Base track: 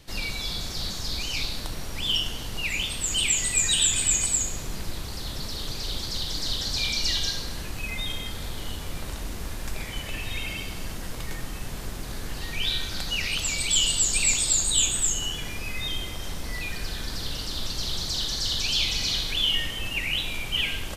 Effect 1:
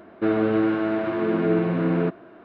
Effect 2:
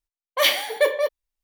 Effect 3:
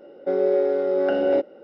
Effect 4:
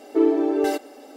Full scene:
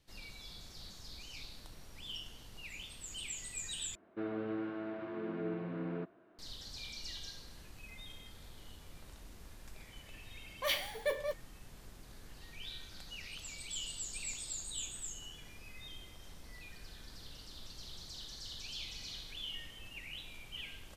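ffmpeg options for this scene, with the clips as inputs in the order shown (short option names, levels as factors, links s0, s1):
-filter_complex "[0:a]volume=0.106,asplit=2[s0][s1];[s0]atrim=end=3.954[s2];[1:a]atrim=end=2.44,asetpts=PTS-STARTPTS,volume=0.133[s3];[s1]atrim=start=6.386[s4];[2:a]atrim=end=1.43,asetpts=PTS-STARTPTS,volume=0.178,afade=t=in:d=0.004:c=hsin,afade=t=out:st=1.426:d=0.004:c=hsin,adelay=10250[s5];[s2][s3]acrossfade=d=0.004:c1=hsin:c2=hsin[s6];[s6][s4]acrossfade=d=0.004:c1=hsin:c2=hsin[s7];[s7][s5]amix=inputs=2:normalize=0"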